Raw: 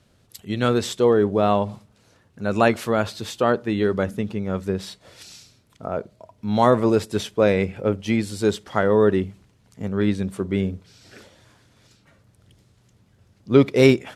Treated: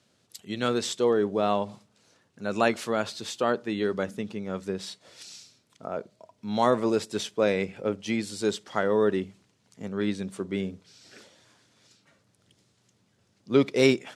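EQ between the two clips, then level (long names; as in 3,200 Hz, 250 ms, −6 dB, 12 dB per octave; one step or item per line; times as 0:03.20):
band-pass filter 160–7,200 Hz
high-shelf EQ 4,900 Hz +11.5 dB
−6.0 dB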